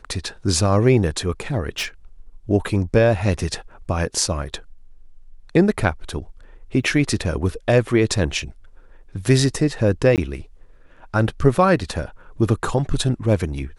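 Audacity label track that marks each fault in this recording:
1.780000	1.860000	clipping −21 dBFS
6.840000	6.840000	drop-out 4.1 ms
10.160000	10.180000	drop-out 18 ms

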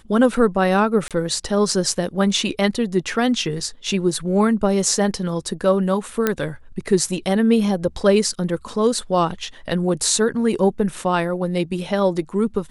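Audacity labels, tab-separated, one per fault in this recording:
1.080000	1.110000	drop-out 27 ms
6.270000	6.270000	click −4 dBFS

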